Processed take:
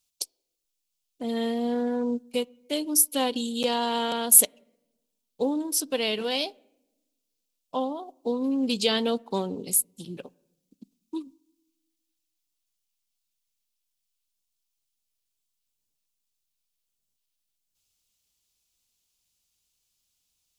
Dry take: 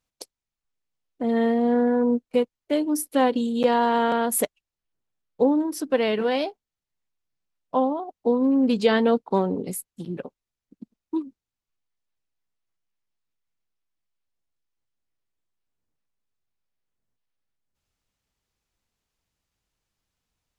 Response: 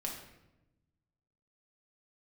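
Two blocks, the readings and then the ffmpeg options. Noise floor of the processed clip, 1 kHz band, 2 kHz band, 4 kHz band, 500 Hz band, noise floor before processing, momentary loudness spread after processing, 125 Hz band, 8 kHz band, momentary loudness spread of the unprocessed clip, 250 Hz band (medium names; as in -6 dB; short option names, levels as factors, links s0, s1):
-81 dBFS, -6.5 dB, -4.5 dB, +6.0 dB, -6.5 dB, under -85 dBFS, 15 LU, -6.5 dB, +11.0 dB, 12 LU, -6.5 dB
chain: -filter_complex "[0:a]aexciter=amount=5.9:drive=4.3:freq=2600,asplit=2[s0][s1];[1:a]atrim=start_sample=2205,lowpass=2600[s2];[s1][s2]afir=irnorm=-1:irlink=0,volume=0.0794[s3];[s0][s3]amix=inputs=2:normalize=0,volume=0.447"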